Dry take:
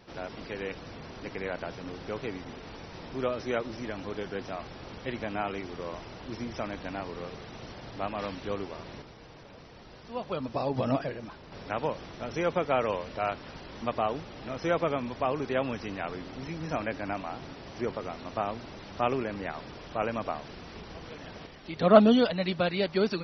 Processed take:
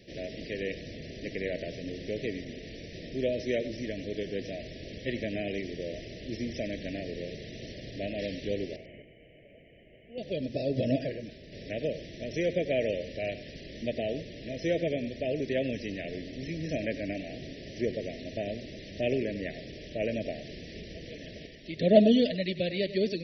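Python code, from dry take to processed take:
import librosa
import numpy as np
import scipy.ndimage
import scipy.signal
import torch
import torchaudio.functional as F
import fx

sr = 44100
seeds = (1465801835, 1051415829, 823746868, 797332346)

p1 = scipy.signal.sosfilt(scipy.signal.cheby1(4, 1.0, [640.0, 1800.0], 'bandstop', fs=sr, output='sos'), x)
p2 = fx.rider(p1, sr, range_db=4, speed_s=2.0)
p3 = p1 + F.gain(torch.from_numpy(p2), -0.5).numpy()
p4 = fx.cheby_ripple(p3, sr, hz=3100.0, ripple_db=9, at=(8.76, 10.18))
p5 = p4 + fx.echo_single(p4, sr, ms=97, db=-14.0, dry=0)
y = F.gain(torch.from_numpy(p5), -5.5).numpy()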